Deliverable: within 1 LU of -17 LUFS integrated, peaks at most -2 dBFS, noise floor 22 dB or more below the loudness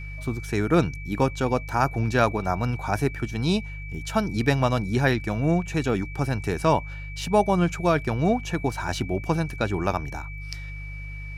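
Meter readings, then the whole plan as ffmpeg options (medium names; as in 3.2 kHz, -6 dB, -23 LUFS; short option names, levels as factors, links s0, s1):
hum 50 Hz; highest harmonic 150 Hz; hum level -33 dBFS; steady tone 2.3 kHz; tone level -40 dBFS; loudness -25.0 LUFS; peak level -6.5 dBFS; loudness target -17.0 LUFS
-> -af "bandreject=f=50:t=h:w=4,bandreject=f=100:t=h:w=4,bandreject=f=150:t=h:w=4"
-af "bandreject=f=2300:w=30"
-af "volume=2.51,alimiter=limit=0.794:level=0:latency=1"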